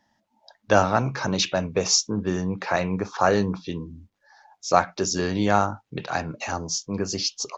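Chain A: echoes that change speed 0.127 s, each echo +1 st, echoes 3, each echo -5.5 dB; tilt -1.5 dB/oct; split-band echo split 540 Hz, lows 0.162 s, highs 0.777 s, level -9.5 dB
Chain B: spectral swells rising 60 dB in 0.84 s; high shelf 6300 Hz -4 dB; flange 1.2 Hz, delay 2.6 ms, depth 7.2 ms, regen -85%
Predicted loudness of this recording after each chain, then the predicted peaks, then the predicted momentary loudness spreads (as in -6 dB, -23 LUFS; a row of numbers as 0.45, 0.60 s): -22.0, -26.0 LUFS; -2.0, -7.0 dBFS; 9, 12 LU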